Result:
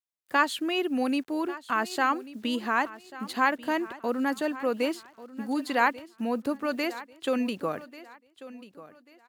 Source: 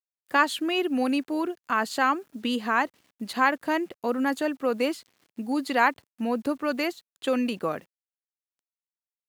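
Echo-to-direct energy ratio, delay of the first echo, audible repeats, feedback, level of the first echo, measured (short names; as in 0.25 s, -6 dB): -16.5 dB, 1.14 s, 2, 30%, -17.0 dB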